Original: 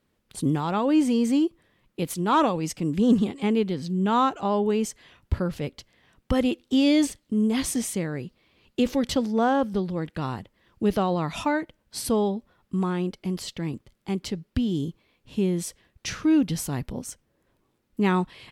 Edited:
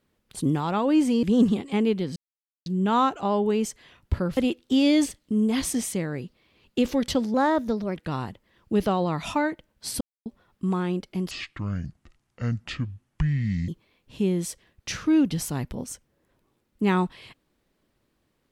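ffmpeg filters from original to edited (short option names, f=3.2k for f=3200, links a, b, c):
-filter_complex "[0:a]asplit=10[a][b][c][d][e][f][g][h][i][j];[a]atrim=end=1.232[k];[b]atrim=start=2.928:end=3.86,asetpts=PTS-STARTPTS,afade=t=out:st=0.928:d=0.004:c=hsin,apad=pad_dur=0.5[l];[c]atrim=start=3.86:end=5.572,asetpts=PTS-STARTPTS,afade=t=in:d=0.004:c=hsin[m];[d]atrim=start=6.378:end=9.354[n];[e]atrim=start=9.35:end=10.06,asetpts=PTS-STARTPTS,asetrate=50715,aresample=44100[o];[f]atrim=start=10.056:end=12.11,asetpts=PTS-STARTPTS,afade=t=out:st=2.05:d=0.004:c=hsin[p];[g]atrim=start=12.11:end=12.36,asetpts=PTS-STARTPTS,volume=0[q];[h]atrim=start=12.36:end=13.414,asetpts=PTS-STARTPTS,afade=t=in:d=0.004:c=hsin[r];[i]atrim=start=13.41:end=14.86,asetpts=PTS-STARTPTS,asetrate=26901,aresample=44100[s];[j]atrim=start=14.856[t];[l][m]concat=n=2:v=0:a=1[u];[k][u]acrossfade=d=0.004:c1=hsin:c2=hsin[v];[v][n]acrossfade=d=0.004:c1=hsin:c2=hsin[w];[w][o]acrossfade=d=0.004:c1=hsin:c2=hsin[x];[p][q][r]concat=n=3:v=0:a=1[y];[x][y]acrossfade=d=0.004:c1=hsin:c2=hsin[z];[z][s]acrossfade=d=0.004:c1=hsin:c2=hsin[aa];[aa][t]acrossfade=d=0.004:c1=hsin:c2=hsin"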